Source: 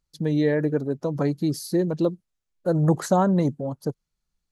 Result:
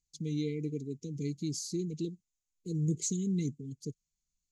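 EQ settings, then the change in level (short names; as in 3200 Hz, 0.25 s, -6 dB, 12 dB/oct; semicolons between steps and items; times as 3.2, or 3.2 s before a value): brick-wall FIR band-stop 480–2000 Hz; synth low-pass 6900 Hz, resonance Q 5.7; bell 450 Hz -5.5 dB 1.2 oct; -9.0 dB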